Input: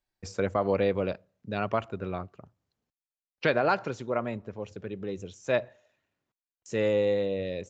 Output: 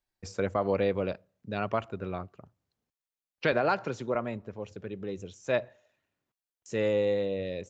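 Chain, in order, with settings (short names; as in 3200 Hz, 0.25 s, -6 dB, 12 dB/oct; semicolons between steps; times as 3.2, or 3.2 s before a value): 3.52–4.15 three-band squash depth 40%; gain -1.5 dB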